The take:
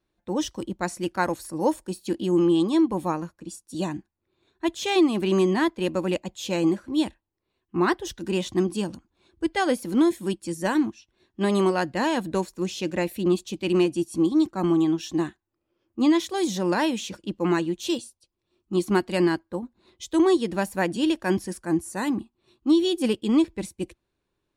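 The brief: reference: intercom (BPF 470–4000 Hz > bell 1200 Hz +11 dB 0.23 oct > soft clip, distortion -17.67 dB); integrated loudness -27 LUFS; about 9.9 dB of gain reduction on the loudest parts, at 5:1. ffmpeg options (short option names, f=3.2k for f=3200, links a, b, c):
-af "acompressor=threshold=-27dB:ratio=5,highpass=470,lowpass=4k,equalizer=f=1.2k:t=o:w=0.23:g=11,asoftclip=threshold=-23dB,volume=10.5dB"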